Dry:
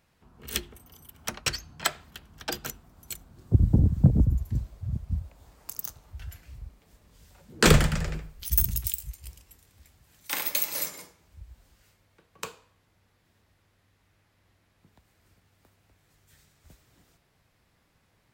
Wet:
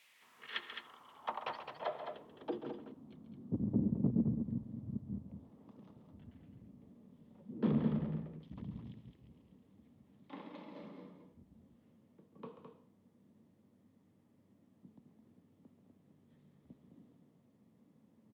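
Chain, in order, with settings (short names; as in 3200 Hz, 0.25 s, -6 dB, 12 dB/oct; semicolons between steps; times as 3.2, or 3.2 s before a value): G.711 law mismatch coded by mu; dynamic EQ 1000 Hz, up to +5 dB, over -51 dBFS, Q 1.6; soft clip -20.5 dBFS, distortion -7 dB; speaker cabinet 150–3600 Hz, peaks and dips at 170 Hz -4 dB, 350 Hz -4 dB, 740 Hz -4 dB, 1500 Hz -9 dB, 2400 Hz -4 dB, 3400 Hz +5 dB; added noise violet -53 dBFS; band-pass sweep 2400 Hz -> 220 Hz, 0.03–3.13; loudspeakers at several distances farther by 47 m -11 dB, 73 m -7 dB; gain +4 dB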